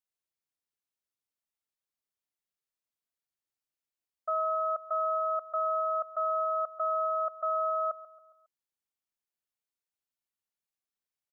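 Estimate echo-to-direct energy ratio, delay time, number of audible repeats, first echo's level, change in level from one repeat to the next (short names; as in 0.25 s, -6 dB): -14.5 dB, 0.137 s, 3, -15.5 dB, -7.0 dB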